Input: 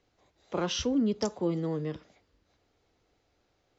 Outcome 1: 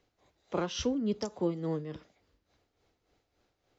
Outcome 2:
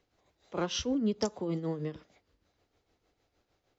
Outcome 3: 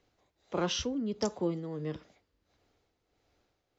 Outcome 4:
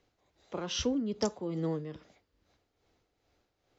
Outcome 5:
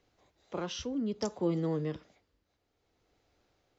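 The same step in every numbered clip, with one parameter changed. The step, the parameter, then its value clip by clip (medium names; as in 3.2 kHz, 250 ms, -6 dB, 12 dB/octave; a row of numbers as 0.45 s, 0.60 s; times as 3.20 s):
tremolo, rate: 3.5 Hz, 6.5 Hz, 1.5 Hz, 2.4 Hz, 0.59 Hz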